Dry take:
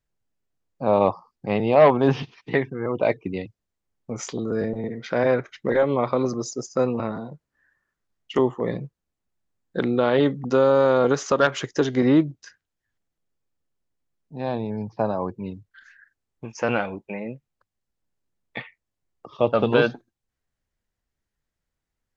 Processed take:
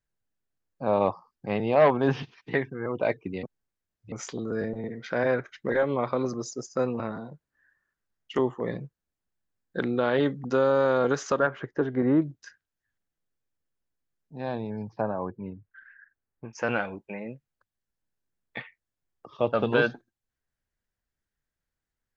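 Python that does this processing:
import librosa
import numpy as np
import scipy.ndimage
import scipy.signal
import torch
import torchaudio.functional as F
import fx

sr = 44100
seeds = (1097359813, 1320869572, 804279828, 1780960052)

y = fx.lowpass(x, sr, hz=1400.0, slope=12, at=(11.39, 12.22))
y = fx.lowpass(y, sr, hz=2200.0, slope=24, at=(15.01, 16.53))
y = fx.edit(y, sr, fx.reverse_span(start_s=3.43, length_s=0.69), tone=tone)
y = fx.peak_eq(y, sr, hz=1600.0, db=5.5, octaves=0.37)
y = F.gain(torch.from_numpy(y), -5.0).numpy()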